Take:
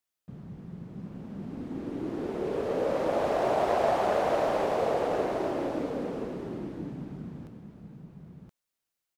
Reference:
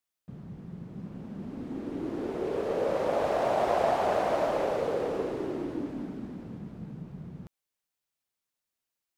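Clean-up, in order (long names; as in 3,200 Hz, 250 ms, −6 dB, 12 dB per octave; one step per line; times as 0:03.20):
clipped peaks rebuilt −16.5 dBFS
echo removal 1,024 ms −5.5 dB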